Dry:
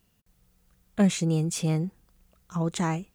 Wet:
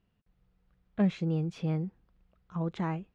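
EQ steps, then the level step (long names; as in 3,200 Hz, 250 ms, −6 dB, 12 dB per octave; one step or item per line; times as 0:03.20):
high-frequency loss of the air 310 metres
−4.5 dB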